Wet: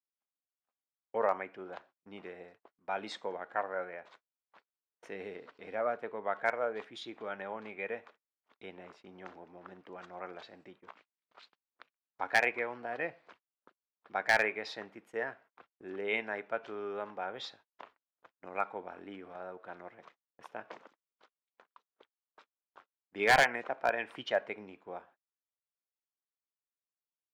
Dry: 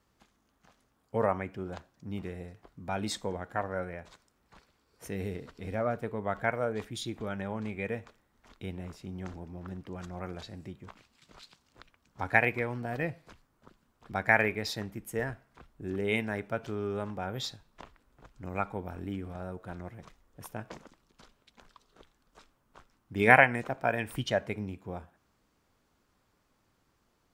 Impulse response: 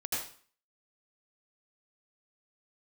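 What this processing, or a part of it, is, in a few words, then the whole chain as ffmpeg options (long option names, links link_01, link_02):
walkie-talkie: -af "highpass=470,lowpass=3000,asoftclip=type=hard:threshold=-17dB,agate=range=-34dB:threshold=-58dB:ratio=16:detection=peak"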